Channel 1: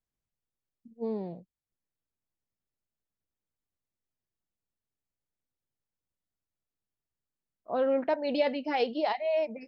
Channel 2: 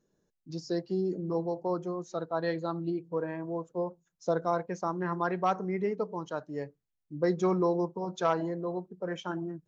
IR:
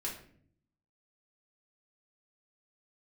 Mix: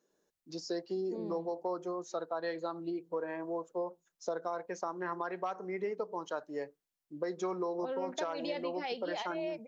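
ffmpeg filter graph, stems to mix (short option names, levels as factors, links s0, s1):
-filter_complex "[0:a]highshelf=f=3400:g=10,adelay=100,volume=0.376[s0];[1:a]highpass=370,alimiter=limit=0.075:level=0:latency=1:release=384,volume=1.26[s1];[s0][s1]amix=inputs=2:normalize=0,acompressor=threshold=0.0224:ratio=3"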